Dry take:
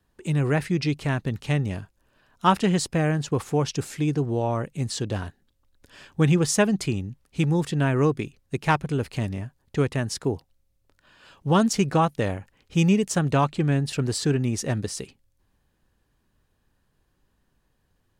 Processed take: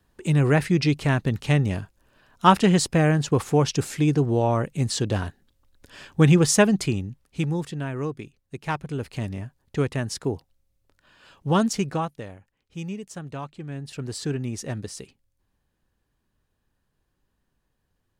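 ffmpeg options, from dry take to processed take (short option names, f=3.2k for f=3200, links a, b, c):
-af "volume=19dB,afade=t=out:st=6.52:d=1.32:silence=0.266073,afade=t=in:st=8.57:d=0.87:silence=0.446684,afade=t=out:st=11.61:d=0.66:silence=0.237137,afade=t=in:st=13.67:d=0.58:silence=0.375837"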